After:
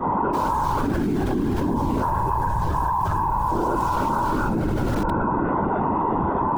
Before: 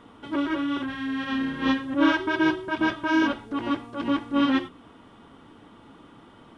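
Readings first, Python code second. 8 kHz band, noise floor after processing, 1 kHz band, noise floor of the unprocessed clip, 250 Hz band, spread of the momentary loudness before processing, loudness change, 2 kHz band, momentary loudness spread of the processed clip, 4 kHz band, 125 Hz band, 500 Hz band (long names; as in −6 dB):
can't be measured, −23 dBFS, +11.0 dB, −52 dBFS, 0.0 dB, 8 LU, +2.5 dB, −5.5 dB, 1 LU, −9.5 dB, +19.0 dB, +6.0 dB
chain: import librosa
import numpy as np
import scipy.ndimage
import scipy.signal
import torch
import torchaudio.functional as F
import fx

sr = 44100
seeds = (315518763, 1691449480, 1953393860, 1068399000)

p1 = fx.tracing_dist(x, sr, depth_ms=0.22)
p2 = scipy.signal.sosfilt(scipy.signal.cheby1(3, 1.0, 920.0, 'lowpass', fs=sr, output='sos'), p1)
p3 = fx.tilt_eq(p2, sr, slope=2.0)
p4 = fx.stiff_resonator(p3, sr, f0_hz=130.0, decay_s=0.59, stiffness=0.002)
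p5 = p4 + fx.room_flutter(p4, sr, wall_m=6.3, rt60_s=0.97, dry=0)
p6 = fx.rev_fdn(p5, sr, rt60_s=2.2, lf_ratio=0.7, hf_ratio=0.3, size_ms=31.0, drr_db=9.5)
p7 = fx.quant_dither(p6, sr, seeds[0], bits=8, dither='none')
p8 = p6 + F.gain(torch.from_numpy(p7), -11.5).numpy()
p9 = fx.whisperise(p8, sr, seeds[1])
p10 = fx.spec_box(p9, sr, start_s=3.5, length_s=0.26, low_hz=320.0, high_hz=760.0, gain_db=11)
p11 = fx.env_flatten(p10, sr, amount_pct=100)
y = F.gain(torch.from_numpy(p11), 7.0).numpy()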